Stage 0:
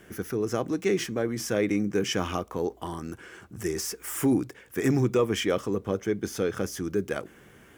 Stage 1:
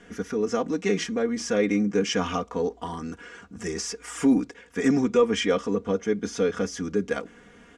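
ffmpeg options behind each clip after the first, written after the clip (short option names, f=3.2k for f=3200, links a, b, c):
-af "lowpass=f=7.6k:w=0.5412,lowpass=f=7.6k:w=1.3066,aecho=1:1:4.2:0.85"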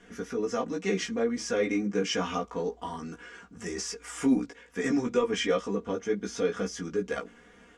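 -af "flanger=delay=15.5:depth=2.1:speed=2.1,equalizer=f=150:w=0.47:g=-2.5"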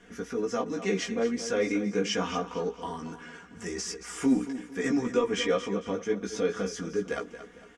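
-af "aecho=1:1:227|454|681|908:0.237|0.0925|0.0361|0.0141"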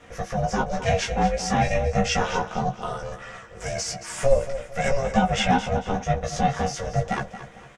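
-filter_complex "[0:a]aeval=exprs='val(0)*sin(2*PI*280*n/s)':c=same,asplit=2[a][b];[b]adelay=15,volume=-7dB[c];[a][c]amix=inputs=2:normalize=0,volume=8dB"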